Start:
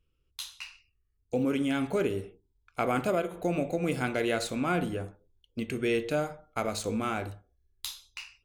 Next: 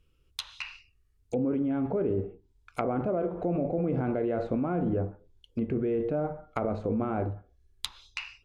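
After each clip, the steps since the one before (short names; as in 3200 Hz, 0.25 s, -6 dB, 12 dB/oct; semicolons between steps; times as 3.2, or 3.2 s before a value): in parallel at 0 dB: negative-ratio compressor -33 dBFS, ratio -0.5; on the sum: treble ducked by the level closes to 780 Hz, closed at -25.5 dBFS; gain -1.5 dB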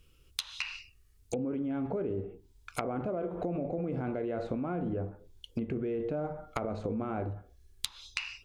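high shelf 3000 Hz +8.5 dB; compressor 4:1, threshold -37 dBFS, peak gain reduction 13 dB; gain +4.5 dB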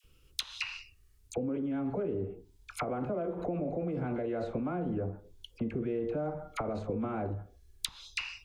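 dispersion lows, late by 43 ms, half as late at 1000 Hz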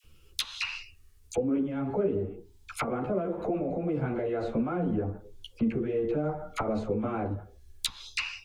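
ensemble effect; gain +7.5 dB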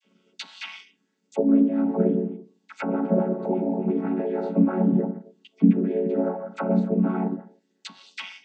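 chord vocoder minor triad, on F#3; gain +8 dB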